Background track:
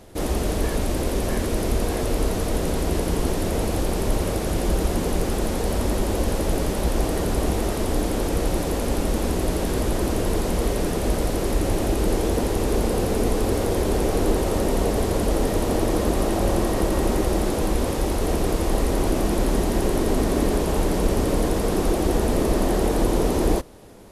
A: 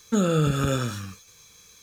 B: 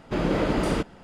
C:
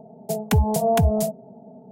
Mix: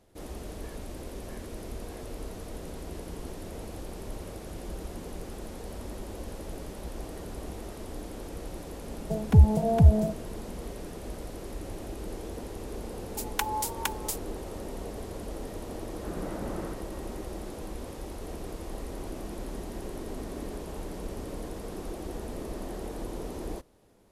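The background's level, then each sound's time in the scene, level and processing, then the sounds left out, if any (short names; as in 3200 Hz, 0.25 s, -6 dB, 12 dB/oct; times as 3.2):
background track -16.5 dB
8.81 add C -9.5 dB + tilt -3.5 dB/oct
12.88 add C -1 dB + brick-wall FIR high-pass 770 Hz
15.92 add B -14 dB + LPF 1900 Hz 24 dB/oct
not used: A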